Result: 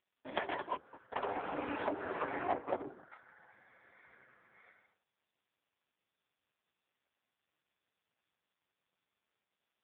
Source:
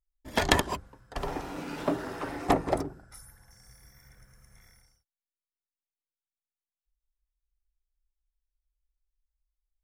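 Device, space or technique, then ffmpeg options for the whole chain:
voicemail: -af "highpass=380,lowpass=2.8k,acompressor=threshold=-37dB:ratio=6,volume=7dB" -ar 8000 -c:a libopencore_amrnb -b:a 5150

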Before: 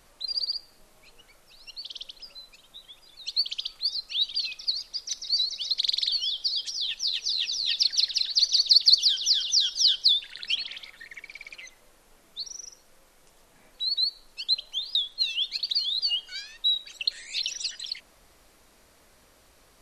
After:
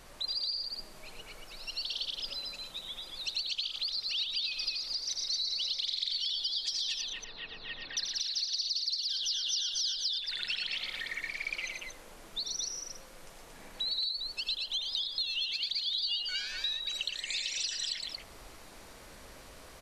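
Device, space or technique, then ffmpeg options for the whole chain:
serial compression, leveller first: -filter_complex "[0:a]asettb=1/sr,asplit=3[a][b][c];[a]atrim=end=7.014[d];[b]atrim=start=7.01:end=7.97,asetpts=PTS-STARTPTS,afade=t=in:d=0.004:c=qsin,afade=t=out:st=0.956:d=0.004:c=qsin,lowpass=f=1.8k:w=0.5412,lowpass=f=1.8k:w=1.3066[e];[c]atrim=start=7.966[f];[d][e]acrossfade=d=0.004:c1=hsin:c2=qsin[g];[g][f]acrossfade=d=0.004:c1=qsin:c2=hsin,highshelf=f=7.6k:g=-5,acompressor=threshold=-31dB:ratio=2,acompressor=threshold=-39dB:ratio=5,aecho=1:1:83|116|230:0.422|0.447|0.631,volume=5.5dB"

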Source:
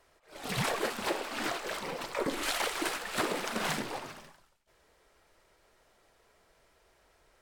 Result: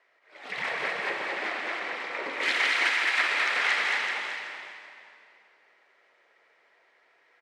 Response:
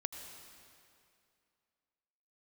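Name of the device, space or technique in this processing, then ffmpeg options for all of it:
station announcement: -filter_complex "[0:a]bandreject=f=57.33:t=h:w=4,bandreject=f=114.66:t=h:w=4,bandreject=f=171.99:t=h:w=4,bandreject=f=229.32:t=h:w=4,bandreject=f=286.65:t=h:w=4,bandreject=f=343.98:t=h:w=4,bandreject=f=401.31:t=h:w=4,bandreject=f=458.64:t=h:w=4,bandreject=f=515.97:t=h:w=4,bandreject=f=573.3:t=h:w=4,bandreject=f=630.63:t=h:w=4,bandreject=f=687.96:t=h:w=4,bandreject=f=745.29:t=h:w=4,bandreject=f=802.62:t=h:w=4,bandreject=f=859.95:t=h:w=4,bandreject=f=917.28:t=h:w=4,bandreject=f=974.61:t=h:w=4,bandreject=f=1.03194k:t=h:w=4,bandreject=f=1.08927k:t=h:w=4,bandreject=f=1.1466k:t=h:w=4,bandreject=f=1.20393k:t=h:w=4,bandreject=f=1.26126k:t=h:w=4,bandreject=f=1.31859k:t=h:w=4,bandreject=f=1.37592k:t=h:w=4,bandreject=f=1.43325k:t=h:w=4,bandreject=f=1.49058k:t=h:w=4,bandreject=f=1.54791k:t=h:w=4,bandreject=f=1.60524k:t=h:w=4,bandreject=f=1.66257k:t=h:w=4,bandreject=f=1.7199k:t=h:w=4,bandreject=f=1.77723k:t=h:w=4,bandreject=f=1.83456k:t=h:w=4,bandreject=f=1.89189k:t=h:w=4,bandreject=f=1.94922k:t=h:w=4,bandreject=f=2.00655k:t=h:w=4,bandreject=f=2.06388k:t=h:w=4,bandreject=f=2.12121k:t=h:w=4,asettb=1/sr,asplit=3[a][b][c];[a]atrim=end=2.404[d];[b]atrim=start=2.4:end=4.06,asetpts=PTS-STARTPTS,afade=t=in:d=0.004:c=qsin,afade=t=out:st=1.656:d=0.004:c=qsin,tiltshelf=f=780:g=-8.5[e];[c]atrim=start=4.056[f];[d][e]acrossfade=d=0.004:c1=hsin:c2=qsin[g];[g][f]acrossfade=d=0.004:c1=qsin:c2=hsin,highpass=400,lowpass=3.8k,equalizer=f=2k:t=o:w=0.57:g=11.5,aecho=1:1:142.9|218.7:0.316|0.708,aecho=1:1:380|760|1140:0.376|0.0677|0.0122[h];[1:a]atrim=start_sample=2205[i];[h][i]afir=irnorm=-1:irlink=0,volume=-1.5dB"

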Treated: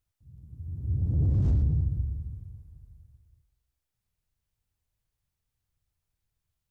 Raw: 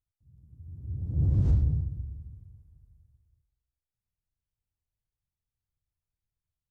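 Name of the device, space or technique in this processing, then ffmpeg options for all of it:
soft clipper into limiter: -af "asoftclip=type=tanh:threshold=-19.5dB,alimiter=level_in=2dB:limit=-24dB:level=0:latency=1:release=140,volume=-2dB,volume=7dB"

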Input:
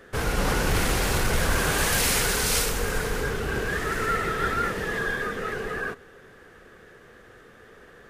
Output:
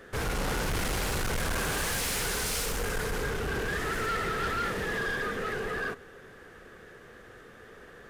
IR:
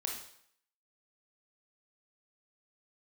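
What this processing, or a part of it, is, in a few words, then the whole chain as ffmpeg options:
saturation between pre-emphasis and de-emphasis: -af "highshelf=f=11k:g=9.5,asoftclip=type=tanh:threshold=-26.5dB,highshelf=f=11k:g=-9.5"

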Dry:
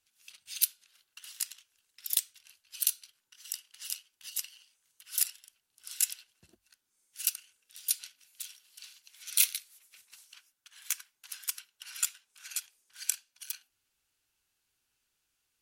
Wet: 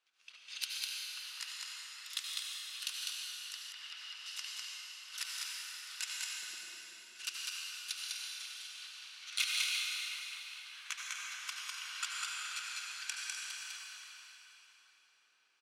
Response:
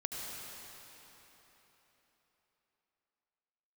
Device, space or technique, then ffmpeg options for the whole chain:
station announcement: -filter_complex "[0:a]highpass=430,lowpass=3.9k,equalizer=f=1.2k:t=o:w=0.39:g=4.5,aecho=1:1:201.2|250.7:0.708|0.282[a];[1:a]atrim=start_sample=2205[b];[a][b]afir=irnorm=-1:irlink=0,asettb=1/sr,asplit=3[c][d][e];[c]atrim=end=3.724[f];[d]atrim=start=3.72:end=4.26,asetpts=PTS-STARTPTS,afade=t=in:d=0.004:c=qsin,afade=t=out:st=0.536:d=0.004:c=qsin,acrossover=split=4100[g][h];[h]acompressor=threshold=-60dB:ratio=4:attack=1:release=60[i];[g][i]amix=inputs=2:normalize=0[j];[e]atrim=start=4.256[k];[f][j]acrossfade=d=0.004:c1=hsin:c2=qsin[l];[l][k]acrossfade=d=0.004:c1=qsin:c2=hsin,volume=2.5dB"

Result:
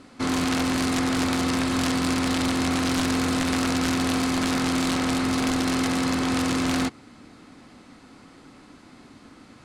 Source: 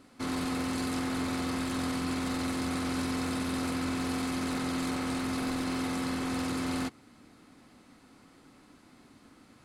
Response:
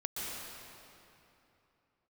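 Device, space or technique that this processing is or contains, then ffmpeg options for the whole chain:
overflowing digital effects unit: -af "aeval=exprs='(mod(16.8*val(0)+1,2)-1)/16.8':c=same,lowpass=8.4k,volume=8.5dB"

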